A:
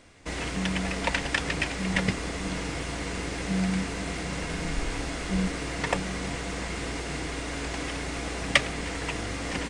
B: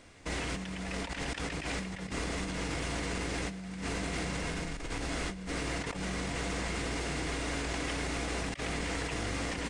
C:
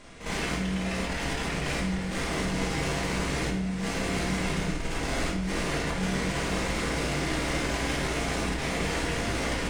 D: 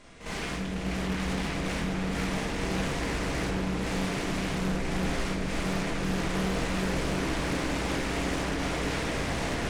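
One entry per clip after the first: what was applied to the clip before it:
compressor whose output falls as the input rises −33 dBFS, ratio −1; level −3 dB
asymmetric clip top −39 dBFS; backwards echo 55 ms −9.5 dB; rectangular room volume 190 cubic metres, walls mixed, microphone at 1.3 metres; level +3 dB
in parallel at −4 dB: wave folding −24.5 dBFS; on the sum: echo whose low-pass opens from repeat to repeat 347 ms, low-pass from 400 Hz, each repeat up 2 octaves, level 0 dB; highs frequency-modulated by the lows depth 0.55 ms; level −7.5 dB

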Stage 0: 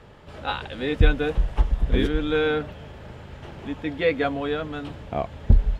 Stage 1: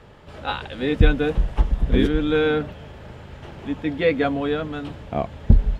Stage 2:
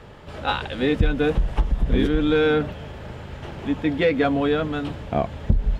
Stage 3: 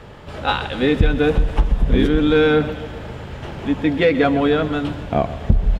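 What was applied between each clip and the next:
dynamic equaliser 210 Hz, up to +5 dB, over −35 dBFS, Q 0.84; level +1 dB
in parallel at −5.5 dB: soft clipping −17 dBFS, distortion −8 dB; on the sum: downward compressor 5 to 1, threshold −15 dBFS, peak gain reduction 9 dB
repeating echo 131 ms, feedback 58%, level −15 dB; level +4 dB

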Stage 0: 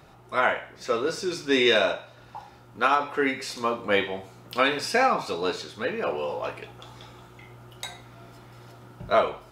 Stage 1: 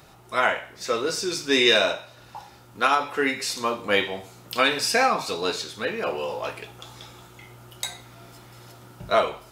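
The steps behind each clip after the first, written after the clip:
high-shelf EQ 3,700 Hz +10.5 dB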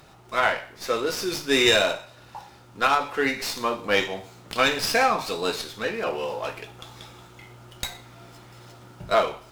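windowed peak hold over 3 samples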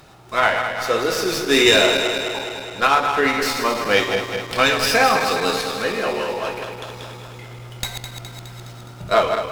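feedback delay that plays each chunk backwards 104 ms, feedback 79%, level −7 dB
level +4 dB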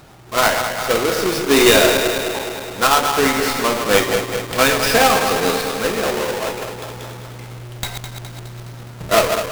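each half-wave held at its own peak
level −2 dB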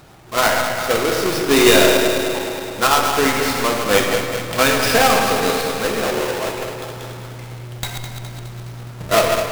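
convolution reverb RT60 1.3 s, pre-delay 62 ms, DRR 7 dB
level −1 dB

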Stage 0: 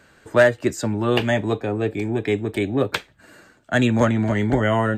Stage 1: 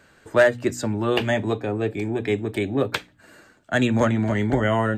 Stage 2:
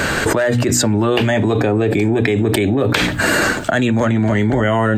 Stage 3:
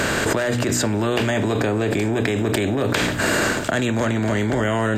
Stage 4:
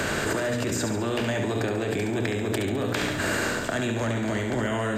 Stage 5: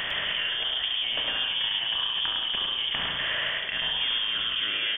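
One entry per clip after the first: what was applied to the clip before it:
hum removal 60.23 Hz, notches 5; level −1.5 dB
envelope flattener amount 100%; level −3 dB
compressor on every frequency bin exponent 0.6; level −8 dB
on a send: flutter between parallel walls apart 11.9 metres, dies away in 0.71 s; on the sum: multiband upward and downward compressor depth 40%; level −7.5 dB
voice inversion scrambler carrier 3,400 Hz; on a send: single-tap delay 105 ms −4 dB; on the sum: level −3.5 dB

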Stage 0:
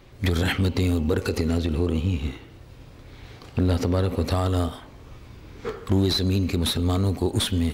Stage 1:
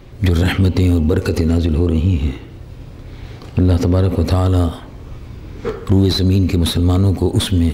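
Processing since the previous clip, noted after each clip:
low-shelf EQ 480 Hz +7 dB
in parallel at −2 dB: brickwall limiter −15.5 dBFS, peak gain reduction 10 dB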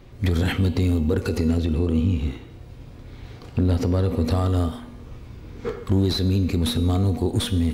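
tuned comb filter 240 Hz, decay 1 s, mix 70%
level +3 dB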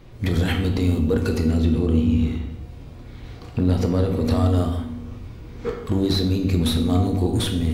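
rectangular room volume 200 cubic metres, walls mixed, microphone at 0.6 metres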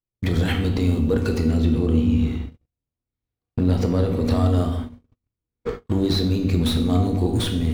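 running median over 3 samples
noise gate −28 dBFS, range −49 dB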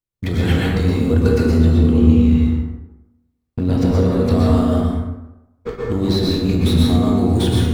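dense smooth reverb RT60 0.96 s, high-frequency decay 0.5×, pre-delay 105 ms, DRR −3 dB

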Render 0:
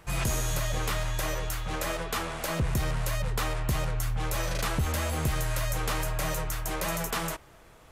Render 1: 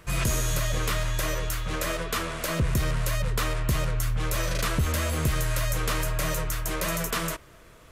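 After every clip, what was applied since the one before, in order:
parametric band 810 Hz −13.5 dB 0.21 octaves
level +3 dB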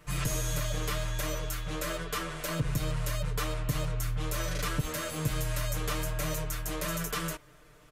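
comb filter 6.7 ms, depth 94%
level −8 dB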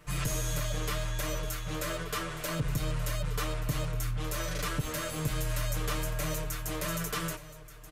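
soft clipping −20 dBFS, distortion −26 dB
single-tap delay 1,180 ms −15.5 dB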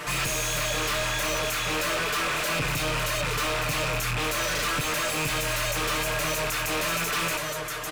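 loose part that buzzes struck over −41 dBFS, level −26 dBFS
mid-hump overdrive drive 33 dB, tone 6,000 Hz, clips at −20.5 dBFS

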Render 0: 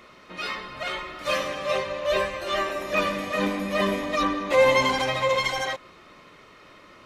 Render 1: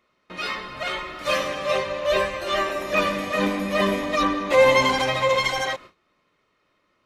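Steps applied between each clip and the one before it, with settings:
noise gate with hold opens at −37 dBFS
level +2.5 dB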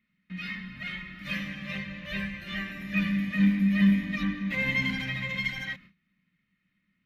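drawn EQ curve 120 Hz 0 dB, 190 Hz +13 dB, 410 Hz −23 dB, 1,100 Hz −20 dB, 1,900 Hz +1 dB, 8,500 Hz −19 dB, 13,000 Hz −6 dB
level −4 dB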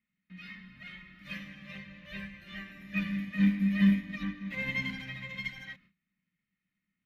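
expander for the loud parts 1.5 to 1, over −35 dBFS
level −1.5 dB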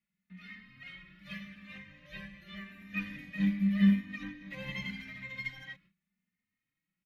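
barber-pole flanger 3.1 ms +0.85 Hz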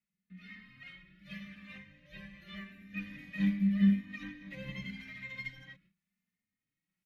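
rotating-speaker cabinet horn 1.1 Hz

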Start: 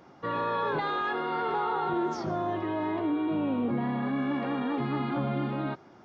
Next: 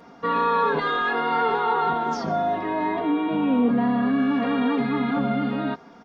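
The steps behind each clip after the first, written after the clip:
comb filter 4.3 ms, depth 91%
level +4 dB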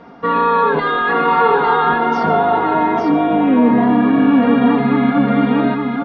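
high-frequency loss of the air 200 metres
single-tap delay 853 ms −3.5 dB
level +8 dB

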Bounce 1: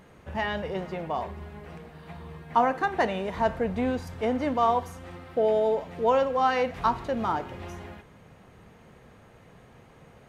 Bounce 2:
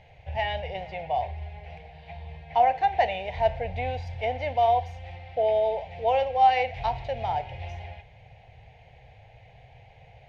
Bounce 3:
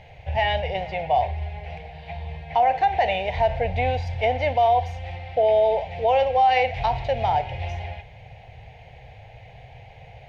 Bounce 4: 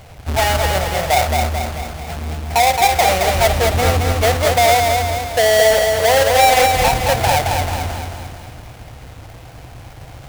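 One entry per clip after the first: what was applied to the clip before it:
drawn EQ curve 120 Hz 0 dB, 210 Hz −23 dB, 320 Hz −25 dB, 480 Hz −10 dB, 780 Hz +2 dB, 1,200 Hz −27 dB, 2,200 Hz +1 dB, 3,800 Hz −5 dB, 5,400 Hz −10 dB, 9,200 Hz −28 dB; level +5.5 dB
brickwall limiter −18.5 dBFS, peak gain reduction 7.5 dB; level +7 dB
each half-wave held at its own peak; feedback echo at a low word length 220 ms, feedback 55%, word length 8 bits, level −4 dB; level +2 dB

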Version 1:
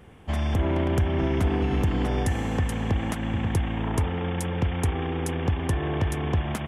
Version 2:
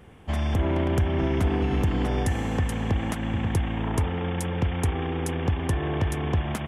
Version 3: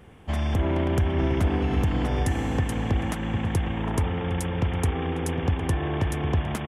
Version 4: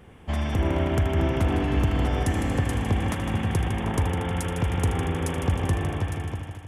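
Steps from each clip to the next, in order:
no processing that can be heard
slap from a distant wall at 130 metres, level −10 dB
fade-out on the ending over 1.06 s; echo machine with several playback heads 78 ms, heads first and second, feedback 67%, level −10.5 dB

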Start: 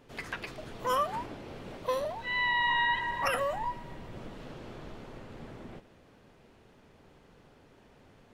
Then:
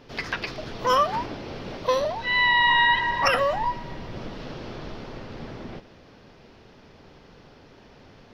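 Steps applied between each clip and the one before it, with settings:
high shelf with overshoot 6,600 Hz −8 dB, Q 3
level +8 dB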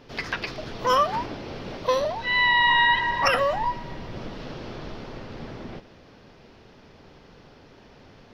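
no processing that can be heard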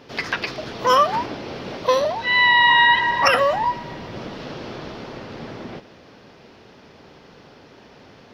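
high-pass filter 150 Hz 6 dB per octave
level +5 dB

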